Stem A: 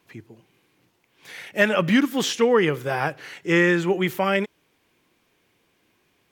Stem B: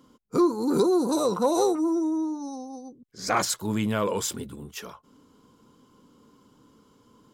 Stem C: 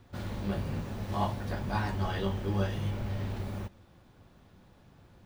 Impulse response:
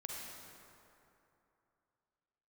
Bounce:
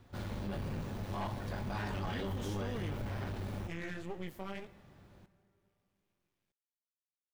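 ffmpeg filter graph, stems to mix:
-filter_complex "[0:a]flanger=delay=16.5:depth=5:speed=2,bass=f=250:g=8,treble=f=4000:g=3,adelay=200,volume=0.15,asplit=2[s0][s1];[s1]volume=0.112[s2];[2:a]aeval=exprs='(tanh(28.2*val(0)+0.45)-tanh(0.45))/28.2':c=same,volume=0.794,asplit=2[s3][s4];[s4]volume=0.316[s5];[s0]aeval=exprs='max(val(0),0)':c=same,alimiter=level_in=1.88:limit=0.0631:level=0:latency=1:release=122,volume=0.531,volume=1[s6];[3:a]atrim=start_sample=2205[s7];[s2][s5]amix=inputs=2:normalize=0[s8];[s8][s7]afir=irnorm=-1:irlink=0[s9];[s3][s6][s9]amix=inputs=3:normalize=0,alimiter=level_in=2:limit=0.0631:level=0:latency=1:release=30,volume=0.501"

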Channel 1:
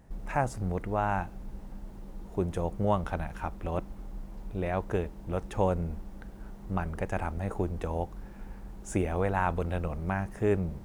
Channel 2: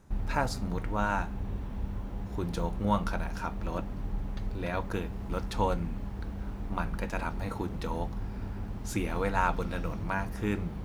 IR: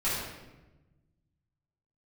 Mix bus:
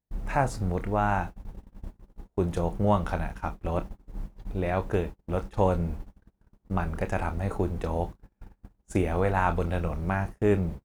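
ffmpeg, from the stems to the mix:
-filter_complex "[0:a]acontrast=23,volume=0.794[s0];[1:a]adelay=24,volume=0.422[s1];[s0][s1]amix=inputs=2:normalize=0,agate=range=0.0158:threshold=0.0224:ratio=16:detection=peak"

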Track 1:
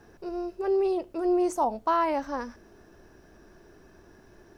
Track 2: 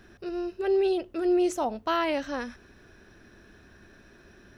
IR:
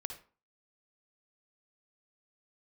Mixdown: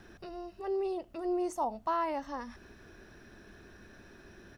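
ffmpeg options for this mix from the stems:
-filter_complex "[0:a]volume=0.447,asplit=2[s0][s1];[1:a]acompressor=threshold=0.0178:ratio=6,adelay=0.9,volume=0.891[s2];[s1]apad=whole_len=201889[s3];[s2][s3]sidechaincompress=threshold=0.00794:ratio=8:attack=6.6:release=178[s4];[s0][s4]amix=inputs=2:normalize=0"

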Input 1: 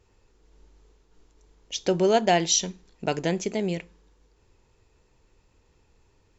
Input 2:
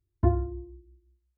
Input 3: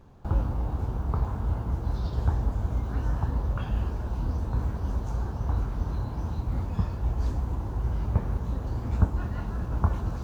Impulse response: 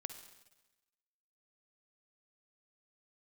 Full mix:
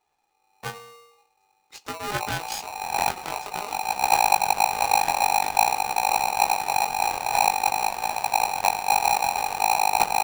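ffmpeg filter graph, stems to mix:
-filter_complex "[0:a]volume=0.355,asplit=2[s0][s1];[1:a]highpass=f=530:p=1,adelay=400,volume=0.794[s2];[2:a]aecho=1:1:2.8:0.92,adelay=1850,volume=0.944[s3];[s1]apad=whole_len=533151[s4];[s3][s4]sidechaincompress=threshold=0.0141:ratio=12:attack=11:release=521[s5];[s0][s2][s5]amix=inputs=3:normalize=0,aeval=exprs='0.531*(cos(1*acos(clip(val(0)/0.531,-1,1)))-cos(1*PI/2))+0.106*(cos(8*acos(clip(val(0)/0.531,-1,1)))-cos(8*PI/2))':c=same,flanger=delay=17.5:depth=5.6:speed=0.49,aeval=exprs='val(0)*sgn(sin(2*PI*820*n/s))':c=same"

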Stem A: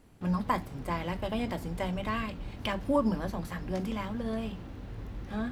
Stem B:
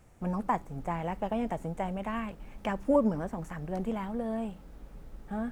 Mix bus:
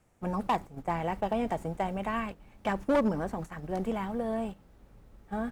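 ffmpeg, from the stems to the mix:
-filter_complex "[0:a]volume=0.224[s0];[1:a]lowshelf=f=130:g=-6.5,adelay=0.6,volume=1.41[s1];[s0][s1]amix=inputs=2:normalize=0,volume=10.6,asoftclip=hard,volume=0.0944,agate=range=0.355:threshold=0.0141:ratio=16:detection=peak"

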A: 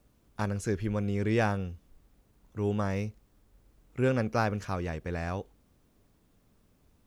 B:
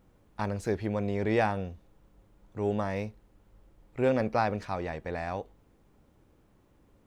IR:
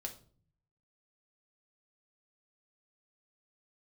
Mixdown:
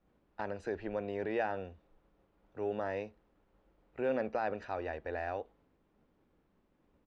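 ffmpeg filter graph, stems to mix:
-filter_complex "[0:a]alimiter=limit=0.0794:level=0:latency=1,volume=0.316[s0];[1:a]agate=range=0.0224:threshold=0.00126:ratio=3:detection=peak,highpass=90,alimiter=limit=0.112:level=0:latency=1,volume=-1,adelay=0.9,volume=0.596[s1];[s0][s1]amix=inputs=2:normalize=0,lowpass=3200,equalizer=f=110:t=o:w=0.53:g=-10"

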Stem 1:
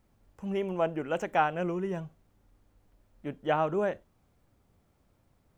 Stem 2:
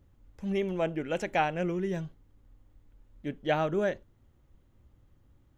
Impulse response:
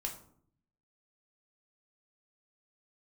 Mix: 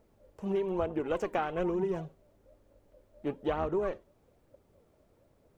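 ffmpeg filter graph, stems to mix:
-filter_complex "[0:a]equalizer=f=400:t=o:w=0.95:g=9,volume=0.841[s0];[1:a]equalizer=f=190:w=1.5:g=-7,aeval=exprs='val(0)*sin(2*PI*560*n/s)':c=same,aphaser=in_gain=1:out_gain=1:delay=3.5:decay=0.78:speed=1.1:type=triangular,volume=0.335[s1];[s0][s1]amix=inputs=2:normalize=0,acompressor=threshold=0.0447:ratio=10"

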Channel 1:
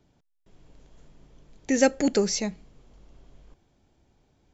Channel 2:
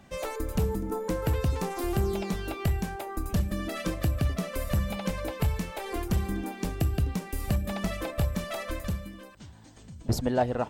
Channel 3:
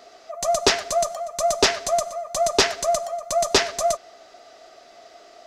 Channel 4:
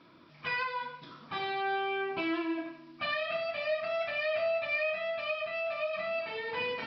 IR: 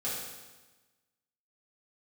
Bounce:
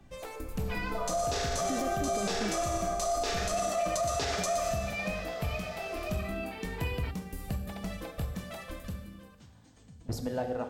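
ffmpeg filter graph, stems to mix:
-filter_complex "[0:a]aemphasis=mode=reproduction:type=riaa,acompressor=threshold=0.0794:ratio=6,volume=0.501,asplit=2[s0][s1];[1:a]volume=0.335,asplit=2[s2][s3];[s3]volume=0.355[s4];[2:a]acompressor=threshold=0.0794:ratio=6,flanger=delay=6.6:depth=8.1:regen=58:speed=1:shape=sinusoidal,adelay=650,volume=1.33,asplit=2[s5][s6];[s6]volume=0.596[s7];[3:a]adelay=250,volume=0.531[s8];[s1]apad=whole_len=269658[s9];[s5][s9]sidechaincompress=threshold=0.00316:ratio=8:attack=16:release=252[s10];[4:a]atrim=start_sample=2205[s11];[s4][s7]amix=inputs=2:normalize=0[s12];[s12][s11]afir=irnorm=-1:irlink=0[s13];[s0][s2][s10][s8][s13]amix=inputs=5:normalize=0,alimiter=limit=0.075:level=0:latency=1:release=37"

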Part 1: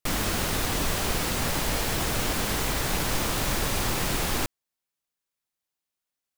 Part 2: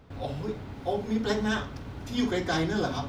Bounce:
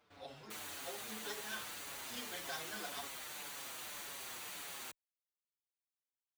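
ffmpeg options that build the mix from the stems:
-filter_complex "[0:a]bandreject=f=5200:w=7.7,adelay=450,volume=0.224[s0];[1:a]acompressor=threshold=0.0398:ratio=6,volume=0.596[s1];[s0][s1]amix=inputs=2:normalize=0,highpass=f=1300:p=1,asplit=2[s2][s3];[s3]adelay=6.2,afreqshift=-1.8[s4];[s2][s4]amix=inputs=2:normalize=1"

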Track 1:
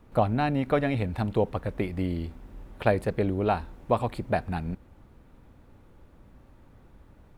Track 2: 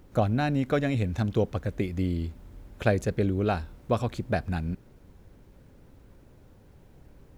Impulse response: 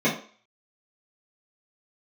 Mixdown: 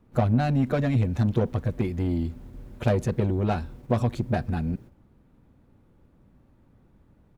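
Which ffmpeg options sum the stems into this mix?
-filter_complex "[0:a]volume=0.376,asplit=2[s0][s1];[1:a]asoftclip=type=tanh:threshold=0.0631,adelay=8.1,volume=0.944[s2];[s1]apad=whole_len=325743[s3];[s2][s3]sidechaingate=range=0.0224:threshold=0.00178:ratio=16:detection=peak[s4];[s0][s4]amix=inputs=2:normalize=0,equalizer=f=180:w=0.57:g=7.5"

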